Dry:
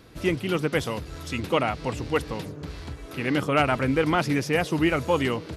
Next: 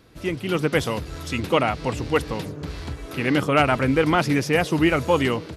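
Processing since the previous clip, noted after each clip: AGC gain up to 8 dB; gain -3 dB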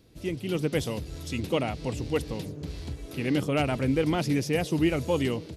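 bell 1300 Hz -11.5 dB 1.6 oct; gain -3.5 dB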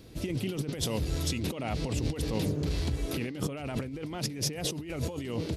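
negative-ratio compressor -35 dBFS, ratio -1; gain +2 dB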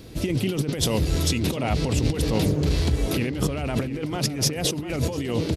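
outdoor echo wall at 120 m, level -11 dB; gain +8 dB

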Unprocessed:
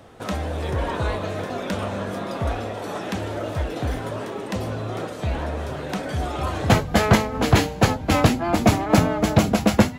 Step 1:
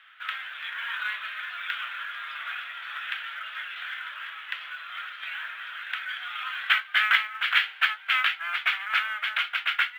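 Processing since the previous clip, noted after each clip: elliptic band-pass 1400–3300 Hz, stop band 80 dB; short-mantissa float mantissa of 4-bit; gain +5.5 dB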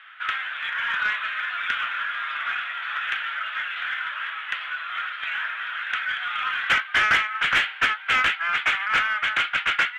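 overdrive pedal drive 17 dB, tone 1500 Hz, clips at -7 dBFS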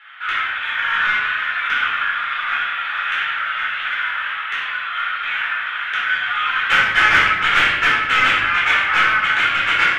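shoebox room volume 480 m³, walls mixed, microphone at 4.2 m; gain -3 dB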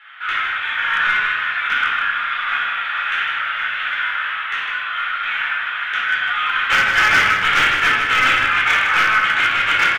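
overloaded stage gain 9 dB; echo 0.155 s -8 dB

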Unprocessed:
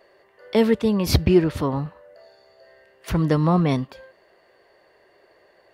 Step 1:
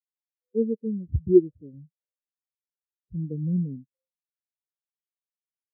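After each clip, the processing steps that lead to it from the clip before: steep low-pass 560 Hz 48 dB/oct; spectral expander 2.5:1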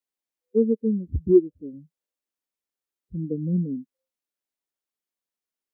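graphic EQ 125/250/500 Hz -11/+7/+3 dB; compressor 2:1, threshold -21 dBFS, peak gain reduction 8.5 dB; gain +3.5 dB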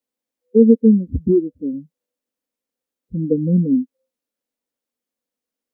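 limiter -14.5 dBFS, peak gain reduction 8 dB; small resonant body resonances 250/490 Hz, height 13 dB, ringing for 35 ms; gain +2.5 dB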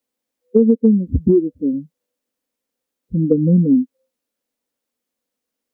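compressor, threshold -14 dBFS, peak gain reduction 8.5 dB; gain +5 dB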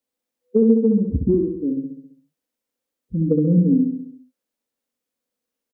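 feedback echo 67 ms, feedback 56%, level -5 dB; gain -4.5 dB

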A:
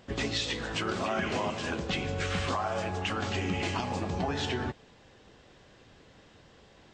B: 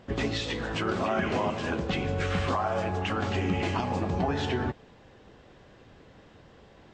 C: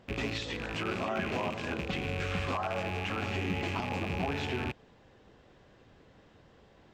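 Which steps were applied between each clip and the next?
high shelf 2800 Hz -10 dB; gain +4 dB
rattling part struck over -34 dBFS, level -21 dBFS; gain -5.5 dB

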